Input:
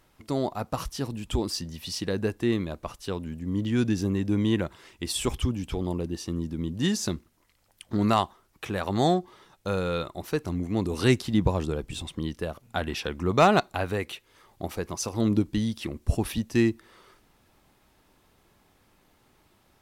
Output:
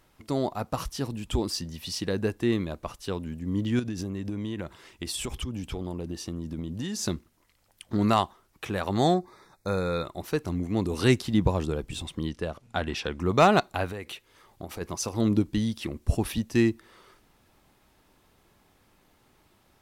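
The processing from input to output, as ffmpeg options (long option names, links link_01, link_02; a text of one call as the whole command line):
ffmpeg -i in.wav -filter_complex "[0:a]asettb=1/sr,asplit=3[link_01][link_02][link_03];[link_01]atrim=end=3.794[link_04];[link_02]atrim=start=3.79:end=6.99,asetpts=PTS-STARTPTS,afade=type=in:duration=0.004:curve=qsin,afade=type=out:start_time=3.196:duration=0.004:curve=qsin,acompressor=threshold=-28dB:ratio=12:attack=3.2:release=140:knee=1:detection=peak[link_05];[link_03]atrim=start=6.986[link_06];[link_04][link_05]acrossfade=duration=0.004:curve1=hsin:curve2=qsin[link_07];[link_07][link_06]acrossfade=duration=0.004:curve1=qsin:curve2=hsin,asettb=1/sr,asplit=3[link_08][link_09][link_10];[link_08]atrim=end=9.144[link_11];[link_09]atrim=start=9.14:end=10.05,asetpts=PTS-STARTPTS,afade=type=in:duration=0.004:curve=qsin,afade=type=out:start_time=0.906:duration=0.004:curve=qsin,asuperstop=centerf=3000:order=8:qfactor=2.7[link_12];[link_10]atrim=start=10.046[link_13];[link_11][link_12]acrossfade=duration=0.004:curve1=hsin:curve2=qsin[link_14];[link_14][link_13]acrossfade=duration=0.004:curve1=qsin:curve2=hsin,asettb=1/sr,asplit=3[link_15][link_16][link_17];[link_15]atrim=end=12.294[link_18];[link_16]atrim=start=12.29:end=13.2,asetpts=PTS-STARTPTS,afade=type=in:duration=0.004:curve=qsin,afade=type=out:start_time=0.906:duration=0.004:curve=qsin,lowpass=8400[link_19];[link_17]atrim=start=13.196[link_20];[link_18][link_19]acrossfade=duration=0.004:curve1=hsin:curve2=qsin[link_21];[link_21][link_20]acrossfade=duration=0.004:curve1=qsin:curve2=hsin,asplit=3[link_22][link_23][link_24];[link_22]afade=type=out:start_time=13.89:duration=0.02[link_25];[link_23]acompressor=threshold=-33dB:ratio=4:attack=3.2:release=140:knee=1:detection=peak,afade=type=in:start_time=13.89:duration=0.02,afade=type=out:start_time=14.8:duration=0.02[link_26];[link_24]afade=type=in:start_time=14.8:duration=0.02[link_27];[link_25][link_26][link_27]amix=inputs=3:normalize=0" out.wav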